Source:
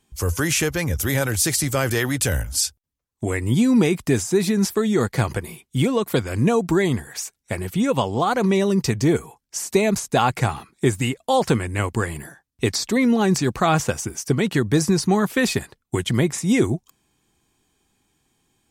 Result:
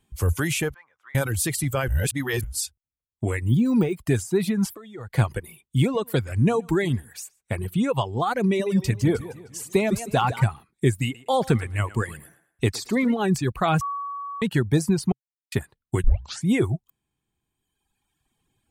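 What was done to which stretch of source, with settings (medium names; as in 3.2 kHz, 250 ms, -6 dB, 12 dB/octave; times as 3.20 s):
0.74–1.15 s: ladder band-pass 1.3 kHz, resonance 45%
1.88–2.44 s: reverse
3.44–4.05 s: de-esser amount 85%
4.69–5.14 s: compression, threshold -29 dBFS
5.82–7.79 s: delay 121 ms -17 dB
8.44–10.45 s: modulated delay 154 ms, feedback 54%, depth 131 cents, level -8 dB
11.03–13.14 s: thinning echo 113 ms, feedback 30%, high-pass 290 Hz, level -8.5 dB
13.81–14.42 s: bleep 1.13 kHz -21 dBFS
15.12–15.52 s: mute
16.04 s: tape start 0.42 s
whole clip: reverb removal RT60 1.7 s; FFT filter 130 Hz 0 dB, 260 Hz -5 dB, 3.4 kHz -5 dB, 5.7 kHz -13 dB, 8.8 kHz -6 dB; trim +2 dB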